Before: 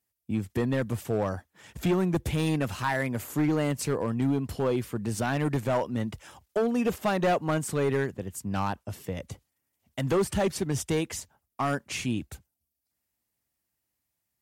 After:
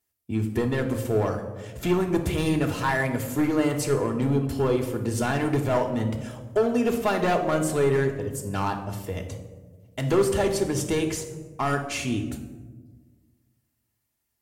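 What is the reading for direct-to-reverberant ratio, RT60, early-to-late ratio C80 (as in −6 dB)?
3.5 dB, 1.4 s, 10.5 dB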